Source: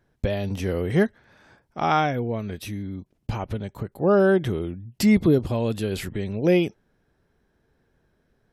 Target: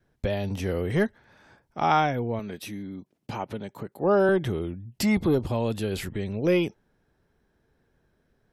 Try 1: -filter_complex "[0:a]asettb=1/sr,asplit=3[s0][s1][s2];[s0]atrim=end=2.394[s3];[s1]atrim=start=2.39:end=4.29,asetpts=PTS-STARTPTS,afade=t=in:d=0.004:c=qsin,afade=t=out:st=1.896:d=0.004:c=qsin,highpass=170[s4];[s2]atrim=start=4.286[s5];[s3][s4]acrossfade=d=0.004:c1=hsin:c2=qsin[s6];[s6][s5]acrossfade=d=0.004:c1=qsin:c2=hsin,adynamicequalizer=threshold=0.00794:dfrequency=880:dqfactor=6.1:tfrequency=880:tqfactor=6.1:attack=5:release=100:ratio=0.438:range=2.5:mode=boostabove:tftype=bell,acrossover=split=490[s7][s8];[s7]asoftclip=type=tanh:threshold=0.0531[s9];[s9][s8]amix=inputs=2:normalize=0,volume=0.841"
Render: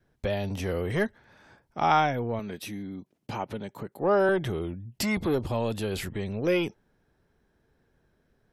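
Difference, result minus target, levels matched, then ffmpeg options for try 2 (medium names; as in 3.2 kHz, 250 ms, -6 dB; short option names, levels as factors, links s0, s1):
saturation: distortion +7 dB
-filter_complex "[0:a]asettb=1/sr,asplit=3[s0][s1][s2];[s0]atrim=end=2.394[s3];[s1]atrim=start=2.39:end=4.29,asetpts=PTS-STARTPTS,afade=t=in:d=0.004:c=qsin,afade=t=out:st=1.896:d=0.004:c=qsin,highpass=170[s4];[s2]atrim=start=4.286[s5];[s3][s4]acrossfade=d=0.004:c1=hsin:c2=qsin[s6];[s6][s5]acrossfade=d=0.004:c1=qsin:c2=hsin,adynamicequalizer=threshold=0.00794:dfrequency=880:dqfactor=6.1:tfrequency=880:tqfactor=6.1:attack=5:release=100:ratio=0.438:range=2.5:mode=boostabove:tftype=bell,acrossover=split=490[s7][s8];[s7]asoftclip=type=tanh:threshold=0.133[s9];[s9][s8]amix=inputs=2:normalize=0,volume=0.841"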